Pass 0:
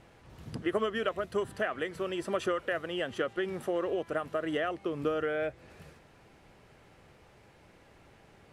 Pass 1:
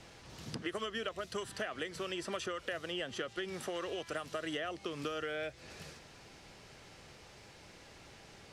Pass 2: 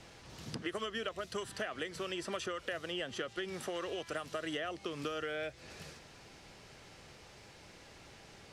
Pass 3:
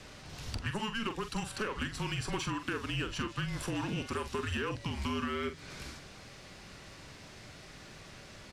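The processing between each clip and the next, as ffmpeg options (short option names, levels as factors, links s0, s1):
-filter_complex "[0:a]equalizer=f=5400:w=0.71:g=12.5,acrossover=split=120|1100|2700[s0][s1][s2][s3];[s0]acompressor=threshold=0.001:ratio=4[s4];[s1]acompressor=threshold=0.00891:ratio=4[s5];[s2]acompressor=threshold=0.00501:ratio=4[s6];[s3]acompressor=threshold=0.00398:ratio=4[s7];[s4][s5][s6][s7]amix=inputs=4:normalize=0,volume=1.12"
-af anull
-filter_complex "[0:a]afreqshift=-220,asplit=2[s0][s1];[s1]aeval=exprs='0.0126*(abs(mod(val(0)/0.0126+3,4)-2)-1)':c=same,volume=0.282[s2];[s0][s2]amix=inputs=2:normalize=0,asplit=2[s3][s4];[s4]adelay=44,volume=0.335[s5];[s3][s5]amix=inputs=2:normalize=0,volume=1.33"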